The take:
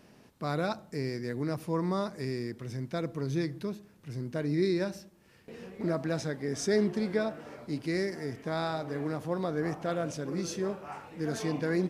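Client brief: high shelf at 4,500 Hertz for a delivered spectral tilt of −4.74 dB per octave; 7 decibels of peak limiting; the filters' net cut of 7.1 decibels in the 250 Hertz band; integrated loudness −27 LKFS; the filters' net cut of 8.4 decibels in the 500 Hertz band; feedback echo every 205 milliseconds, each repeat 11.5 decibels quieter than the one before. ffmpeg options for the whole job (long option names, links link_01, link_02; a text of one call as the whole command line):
ffmpeg -i in.wav -af "equalizer=frequency=250:width_type=o:gain=-8,equalizer=frequency=500:width_type=o:gain=-8.5,highshelf=frequency=4500:gain=3.5,alimiter=level_in=4dB:limit=-24dB:level=0:latency=1,volume=-4dB,aecho=1:1:205|410|615:0.266|0.0718|0.0194,volume=12.5dB" out.wav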